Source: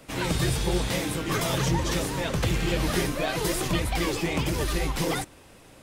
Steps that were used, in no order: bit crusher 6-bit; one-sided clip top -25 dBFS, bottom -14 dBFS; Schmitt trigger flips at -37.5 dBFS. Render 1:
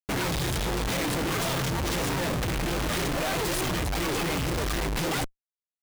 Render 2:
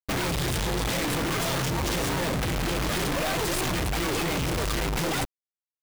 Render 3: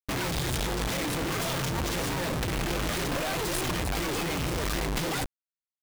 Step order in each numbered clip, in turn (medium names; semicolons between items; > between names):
one-sided clip > bit crusher > Schmitt trigger; Schmitt trigger > one-sided clip > bit crusher; one-sided clip > Schmitt trigger > bit crusher